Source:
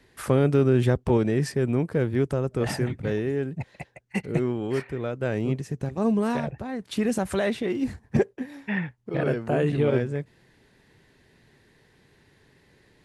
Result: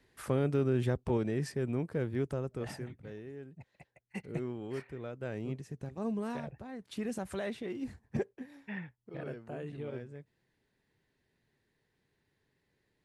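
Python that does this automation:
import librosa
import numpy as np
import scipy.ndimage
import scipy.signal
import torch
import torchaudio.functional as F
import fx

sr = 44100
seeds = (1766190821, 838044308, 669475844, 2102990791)

y = fx.gain(x, sr, db=fx.line((2.39, -9.5), (3.06, -19.0), (3.72, -19.0), (4.25, -12.0), (8.53, -12.0), (9.61, -18.5)))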